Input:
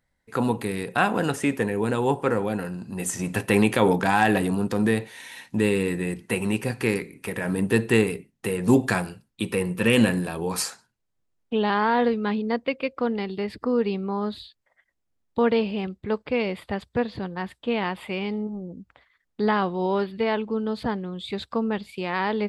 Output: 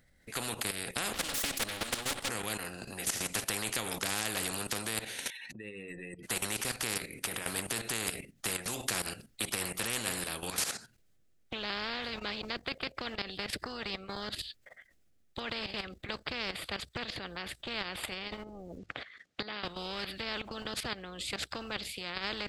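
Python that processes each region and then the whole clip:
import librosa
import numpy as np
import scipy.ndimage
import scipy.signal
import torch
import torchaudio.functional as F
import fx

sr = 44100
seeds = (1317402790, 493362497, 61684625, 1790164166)

y = fx.chain(x, sr, fx.lower_of_two(delay_ms=3.6),
    fx.peak_eq(hz=3500.0, db=9.5, octaves=0.7), at=(1.13, 2.29))
y = fx.chain(y, sr, fx.spec_expand(power=2.2),
    fx.highpass(hz=1200.0, slope=6),
    fx.sustainer(db_per_s=28.0), at=(5.3, 6.23))
y = fx.chain(y, sr, fx.over_compress(threshold_db=-26.0, ratio=-0.5),
    fx.bandpass_edges(low_hz=130.0, high_hz=6300.0), at=(18.78, 19.65))
y = fx.peak_eq(y, sr, hz=960.0, db=-13.5, octaves=0.44)
y = fx.level_steps(y, sr, step_db=14)
y = fx.spectral_comp(y, sr, ratio=4.0)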